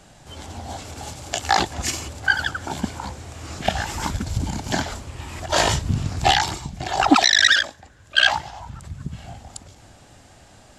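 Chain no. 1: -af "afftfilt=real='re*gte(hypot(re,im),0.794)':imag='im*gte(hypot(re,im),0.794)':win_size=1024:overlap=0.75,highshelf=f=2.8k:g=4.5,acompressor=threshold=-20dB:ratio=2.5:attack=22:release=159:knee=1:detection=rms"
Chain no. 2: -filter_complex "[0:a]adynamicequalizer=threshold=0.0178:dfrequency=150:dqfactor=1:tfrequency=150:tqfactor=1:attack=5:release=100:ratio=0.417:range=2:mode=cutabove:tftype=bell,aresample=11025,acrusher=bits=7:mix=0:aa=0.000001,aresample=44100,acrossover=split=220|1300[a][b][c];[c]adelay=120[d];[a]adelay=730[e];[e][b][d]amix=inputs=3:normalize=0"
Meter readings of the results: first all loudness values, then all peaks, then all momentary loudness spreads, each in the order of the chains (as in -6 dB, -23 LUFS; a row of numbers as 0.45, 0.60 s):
-27.0, -22.5 LUFS; -6.5, -1.5 dBFS; 16, 20 LU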